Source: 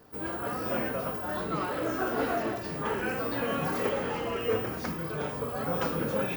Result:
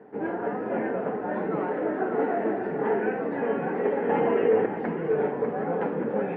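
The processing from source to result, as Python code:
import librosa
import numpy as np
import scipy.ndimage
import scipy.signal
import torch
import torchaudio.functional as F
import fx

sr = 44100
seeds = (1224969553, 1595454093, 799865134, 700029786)

p1 = fx.rider(x, sr, range_db=10, speed_s=0.5)
p2 = fx.cabinet(p1, sr, low_hz=190.0, low_slope=12, high_hz=2000.0, hz=(200.0, 290.0, 420.0, 810.0, 1200.0, 1900.0), db=(8, 3, 9, 7, -9, 4))
p3 = p2 + fx.echo_single(p2, sr, ms=596, db=-7.0, dry=0)
y = fx.env_flatten(p3, sr, amount_pct=50, at=(4.09, 4.66))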